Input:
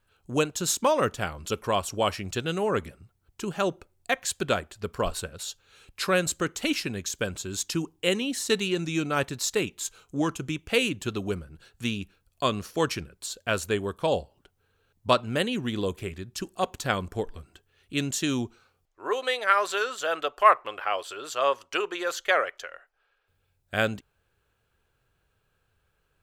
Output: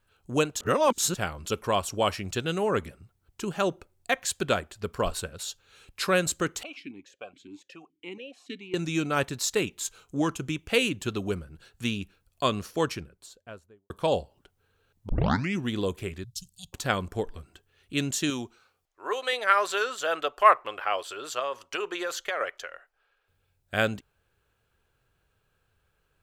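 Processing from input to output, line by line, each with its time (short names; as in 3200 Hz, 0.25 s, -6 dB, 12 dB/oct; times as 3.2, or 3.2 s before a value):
0.6–1.15 reverse
6.63–8.74 vowel sequencer 7.1 Hz
12.55–13.9 studio fade out
15.09 tape start 0.53 s
16.24–16.73 inverse Chebyshev band-stop 260–2100 Hz
18.3–19.33 low shelf 320 Hz -9.5 dB
21.39–22.41 compressor, threshold -26 dBFS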